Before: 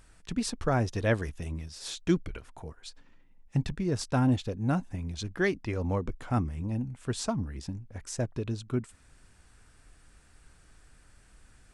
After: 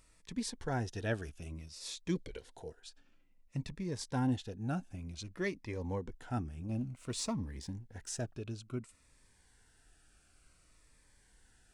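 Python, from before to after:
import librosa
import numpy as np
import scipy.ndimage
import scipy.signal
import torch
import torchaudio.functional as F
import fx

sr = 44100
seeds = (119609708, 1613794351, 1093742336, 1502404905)

y = fx.low_shelf(x, sr, hz=290.0, db=-7.5)
y = fx.notch(y, sr, hz=1200.0, q=17.0)
y = fx.hpss(y, sr, part='percussive', gain_db=-4)
y = fx.graphic_eq_10(y, sr, hz=(500, 1000, 4000, 8000), db=(11, -4, 9, 4), at=(2.15, 2.8))
y = fx.leveller(y, sr, passes=1, at=(6.69, 8.34))
y = fx.notch_cascade(y, sr, direction='falling', hz=0.56)
y = y * librosa.db_to_amplitude(-2.0)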